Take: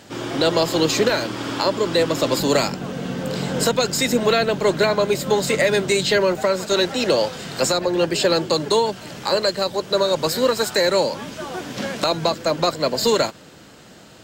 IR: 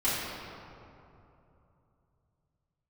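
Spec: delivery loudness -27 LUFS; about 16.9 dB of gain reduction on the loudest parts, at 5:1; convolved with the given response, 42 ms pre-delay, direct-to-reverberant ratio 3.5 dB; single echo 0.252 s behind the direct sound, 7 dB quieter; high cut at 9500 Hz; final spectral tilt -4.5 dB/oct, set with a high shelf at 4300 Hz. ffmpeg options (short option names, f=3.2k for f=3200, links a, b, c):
-filter_complex "[0:a]lowpass=9.5k,highshelf=f=4.3k:g=-3.5,acompressor=threshold=-34dB:ratio=5,aecho=1:1:252:0.447,asplit=2[a][b];[1:a]atrim=start_sample=2205,adelay=42[c];[b][c]afir=irnorm=-1:irlink=0,volume=-14.5dB[d];[a][d]amix=inputs=2:normalize=0,volume=6dB"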